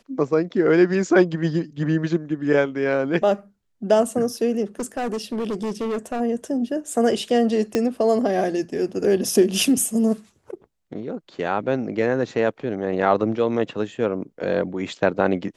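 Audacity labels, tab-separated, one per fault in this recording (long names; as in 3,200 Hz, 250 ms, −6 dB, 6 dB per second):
4.790000	6.210000	clipping −22 dBFS
7.750000	7.750000	click −8 dBFS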